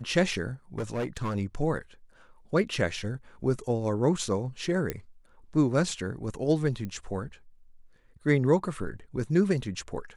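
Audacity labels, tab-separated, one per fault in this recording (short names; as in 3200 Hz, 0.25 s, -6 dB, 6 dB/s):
0.780000	1.360000	clipped -26.5 dBFS
4.900000	4.900000	pop -15 dBFS
6.850000	6.850000	pop -24 dBFS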